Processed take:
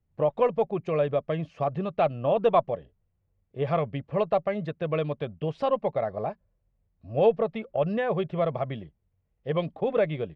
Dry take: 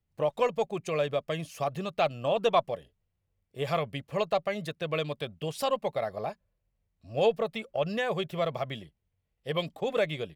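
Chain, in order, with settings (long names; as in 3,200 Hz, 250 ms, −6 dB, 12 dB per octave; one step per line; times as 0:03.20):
head-to-tape spacing loss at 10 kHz 42 dB
level +6 dB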